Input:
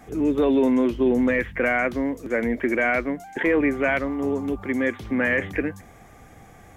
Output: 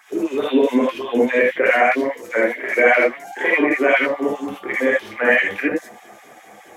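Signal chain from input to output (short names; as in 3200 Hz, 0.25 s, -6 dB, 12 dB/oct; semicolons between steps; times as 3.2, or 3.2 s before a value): LFO high-pass sine 4.9 Hz 290–3600 Hz; non-linear reverb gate 0.1 s rising, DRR -4.5 dB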